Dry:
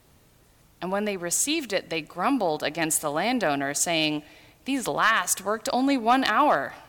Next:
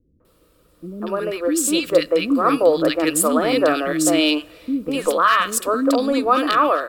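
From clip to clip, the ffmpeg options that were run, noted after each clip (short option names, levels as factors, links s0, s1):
-filter_complex "[0:a]equalizer=f=125:t=o:w=0.33:g=-12,equalizer=f=315:t=o:w=0.33:g=9,equalizer=f=500:t=o:w=0.33:g=12,equalizer=f=800:t=o:w=0.33:g=-11,equalizer=f=1250:t=o:w=0.33:g=10,equalizer=f=2000:t=o:w=0.33:g=-5,equalizer=f=6300:t=o:w=0.33:g=-9,dynaudnorm=f=480:g=5:m=3.76,acrossover=split=310|1500[s0][s1][s2];[s1]adelay=200[s3];[s2]adelay=250[s4];[s0][s3][s4]amix=inputs=3:normalize=0"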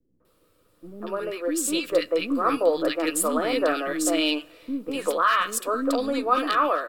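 -filter_complex "[0:a]acrossover=split=170|780|3200[s0][s1][s2][s3];[s0]aeval=exprs='abs(val(0))':c=same[s4];[s2]asplit=2[s5][s6];[s6]adelay=12,volume=0.631[s7];[s5][s7]amix=inputs=2:normalize=0[s8];[s4][s1][s8][s3]amix=inputs=4:normalize=0,volume=0.501"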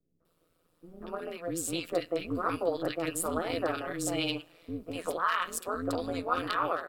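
-af "tremolo=f=170:d=0.857,volume=0.596"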